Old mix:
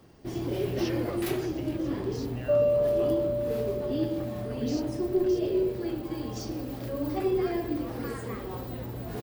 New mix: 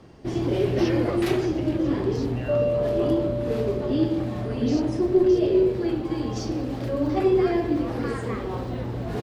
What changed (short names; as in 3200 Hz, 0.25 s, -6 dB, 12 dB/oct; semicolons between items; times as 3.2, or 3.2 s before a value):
speech +4.5 dB; first sound +7.0 dB; master: add air absorption 60 m